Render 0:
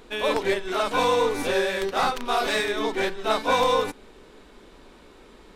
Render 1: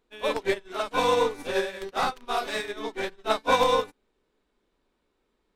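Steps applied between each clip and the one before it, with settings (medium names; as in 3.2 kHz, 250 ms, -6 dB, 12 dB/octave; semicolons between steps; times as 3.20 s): upward expansion 2.5:1, over -36 dBFS; trim +1.5 dB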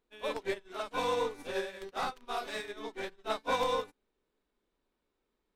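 saturation -11.5 dBFS, distortion -23 dB; trim -8 dB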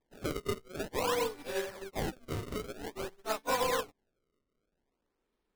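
decimation with a swept rate 30×, swing 160% 0.51 Hz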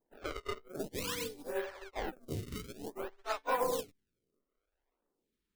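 lamp-driven phase shifter 0.69 Hz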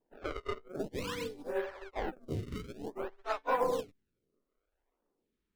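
low-pass 2.2 kHz 6 dB/octave; trim +2.5 dB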